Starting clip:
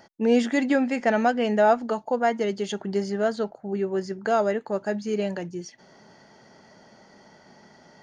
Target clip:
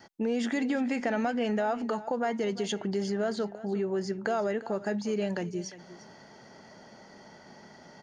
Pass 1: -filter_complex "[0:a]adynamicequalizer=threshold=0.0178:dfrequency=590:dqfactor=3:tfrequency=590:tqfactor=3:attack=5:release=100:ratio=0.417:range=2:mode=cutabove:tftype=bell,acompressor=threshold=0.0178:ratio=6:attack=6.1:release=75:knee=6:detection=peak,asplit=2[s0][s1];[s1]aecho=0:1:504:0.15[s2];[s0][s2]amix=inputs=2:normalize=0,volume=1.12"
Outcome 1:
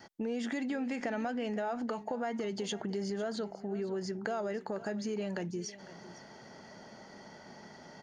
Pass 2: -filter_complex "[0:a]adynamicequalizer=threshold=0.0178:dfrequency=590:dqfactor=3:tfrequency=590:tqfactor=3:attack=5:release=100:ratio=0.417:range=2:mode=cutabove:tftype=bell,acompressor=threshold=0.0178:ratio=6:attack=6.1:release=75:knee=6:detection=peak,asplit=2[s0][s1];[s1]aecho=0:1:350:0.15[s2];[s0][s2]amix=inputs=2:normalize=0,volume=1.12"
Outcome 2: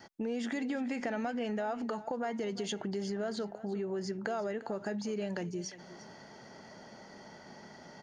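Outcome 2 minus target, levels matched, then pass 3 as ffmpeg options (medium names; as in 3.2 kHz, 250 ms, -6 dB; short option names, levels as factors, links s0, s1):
compression: peak gain reduction +6 dB
-filter_complex "[0:a]adynamicequalizer=threshold=0.0178:dfrequency=590:dqfactor=3:tfrequency=590:tqfactor=3:attack=5:release=100:ratio=0.417:range=2:mode=cutabove:tftype=bell,acompressor=threshold=0.0422:ratio=6:attack=6.1:release=75:knee=6:detection=peak,asplit=2[s0][s1];[s1]aecho=0:1:350:0.15[s2];[s0][s2]amix=inputs=2:normalize=0,volume=1.12"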